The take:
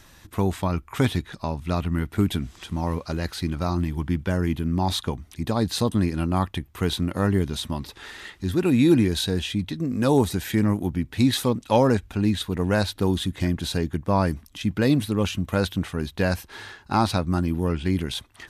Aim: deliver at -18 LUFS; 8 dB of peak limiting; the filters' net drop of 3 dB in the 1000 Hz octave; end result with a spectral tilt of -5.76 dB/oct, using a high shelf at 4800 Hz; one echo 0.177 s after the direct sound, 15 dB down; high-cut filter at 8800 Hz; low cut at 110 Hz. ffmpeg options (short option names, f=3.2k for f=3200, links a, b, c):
-af "highpass=110,lowpass=8.8k,equalizer=f=1k:t=o:g=-3.5,highshelf=f=4.8k:g=-6.5,alimiter=limit=-15.5dB:level=0:latency=1,aecho=1:1:177:0.178,volume=10.5dB"